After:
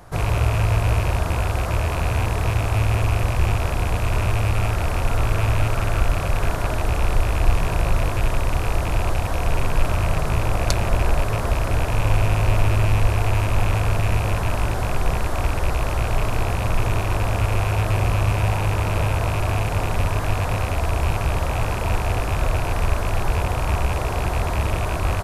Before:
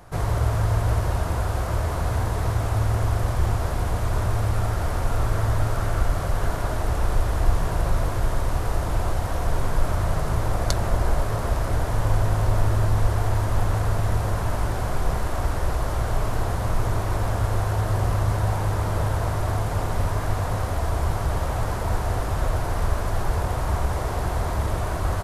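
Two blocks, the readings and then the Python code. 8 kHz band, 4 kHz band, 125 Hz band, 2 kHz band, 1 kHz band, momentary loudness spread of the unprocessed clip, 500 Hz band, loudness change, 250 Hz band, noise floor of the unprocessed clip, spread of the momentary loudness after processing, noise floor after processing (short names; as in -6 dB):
+2.5 dB, +5.5 dB, +2.5 dB, +6.0 dB, +2.5 dB, 4 LU, +2.5 dB, +3.0 dB, +2.5 dB, -27 dBFS, 4 LU, -24 dBFS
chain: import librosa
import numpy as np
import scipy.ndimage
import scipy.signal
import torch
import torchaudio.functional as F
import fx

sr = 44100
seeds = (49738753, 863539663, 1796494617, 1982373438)

y = fx.rattle_buzz(x, sr, strikes_db=-25.0, level_db=-22.0)
y = F.gain(torch.from_numpy(y), 2.5).numpy()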